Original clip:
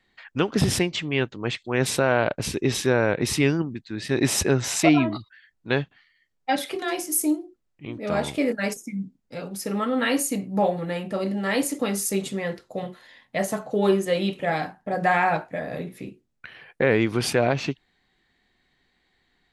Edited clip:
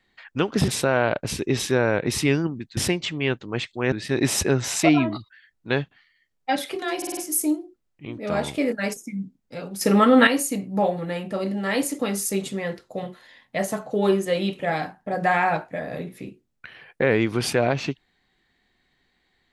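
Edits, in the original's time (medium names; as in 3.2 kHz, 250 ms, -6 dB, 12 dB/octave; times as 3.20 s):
0.68–1.83 s: move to 3.92 s
6.97 s: stutter 0.05 s, 5 plays
9.61–10.07 s: gain +9.5 dB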